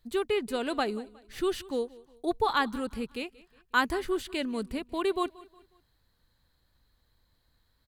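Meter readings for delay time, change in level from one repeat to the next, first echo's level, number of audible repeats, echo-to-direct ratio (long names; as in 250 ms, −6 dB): 181 ms, −8.0 dB, −21.0 dB, 2, −20.5 dB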